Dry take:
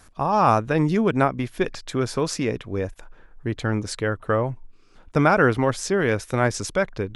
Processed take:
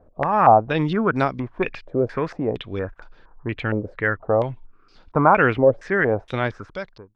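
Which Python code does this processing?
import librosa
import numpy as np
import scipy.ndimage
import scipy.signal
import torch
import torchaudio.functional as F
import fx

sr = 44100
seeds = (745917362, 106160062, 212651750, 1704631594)

y = fx.fade_out_tail(x, sr, length_s=0.91)
y = fx.filter_held_lowpass(y, sr, hz=4.3, low_hz=560.0, high_hz=4600.0)
y = F.gain(torch.from_numpy(y), -1.5).numpy()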